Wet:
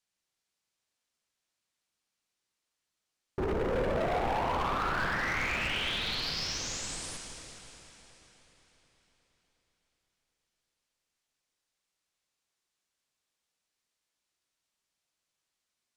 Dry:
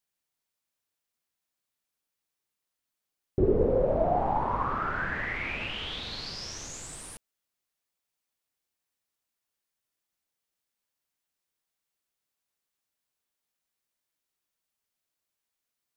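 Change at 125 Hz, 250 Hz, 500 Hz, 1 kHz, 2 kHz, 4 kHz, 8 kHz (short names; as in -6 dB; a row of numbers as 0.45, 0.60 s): -3.5, -4.5, -5.5, -2.0, +1.5, +4.0, +3.5 dB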